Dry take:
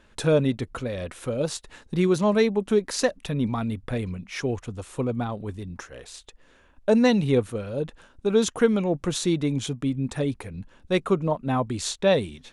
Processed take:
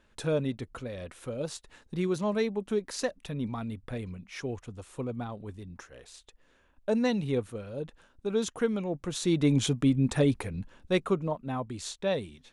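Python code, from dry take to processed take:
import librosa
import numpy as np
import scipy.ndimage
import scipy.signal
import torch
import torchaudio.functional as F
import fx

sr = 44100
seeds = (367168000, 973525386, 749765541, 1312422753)

y = fx.gain(x, sr, db=fx.line((9.1, -8.0), (9.5, 2.0), (10.42, 2.0), (11.53, -9.0)))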